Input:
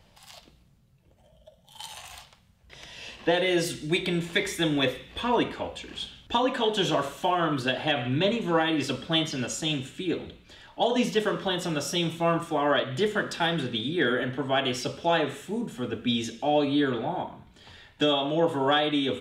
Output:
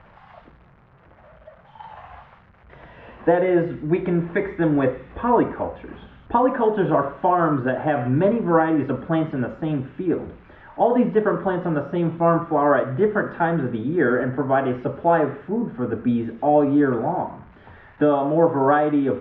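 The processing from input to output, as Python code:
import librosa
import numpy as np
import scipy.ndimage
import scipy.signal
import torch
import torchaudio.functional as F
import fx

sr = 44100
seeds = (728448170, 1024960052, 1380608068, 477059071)

y = x + 0.5 * 10.0 ** (-29.5 / 20.0) * np.diff(np.sign(x), prepend=np.sign(x[:1]))
y = scipy.signal.sosfilt(scipy.signal.butter(4, 1500.0, 'lowpass', fs=sr, output='sos'), y)
y = y * librosa.db_to_amplitude(7.0)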